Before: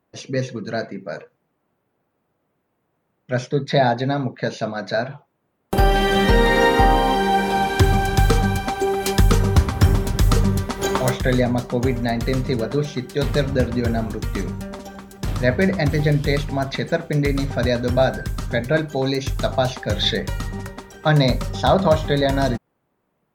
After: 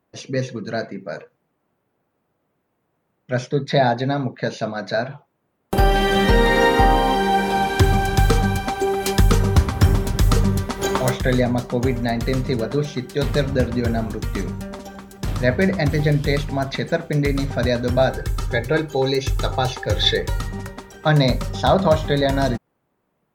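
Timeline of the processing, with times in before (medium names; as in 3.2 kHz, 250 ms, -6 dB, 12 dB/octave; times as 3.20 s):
18.10–20.41 s: comb 2.3 ms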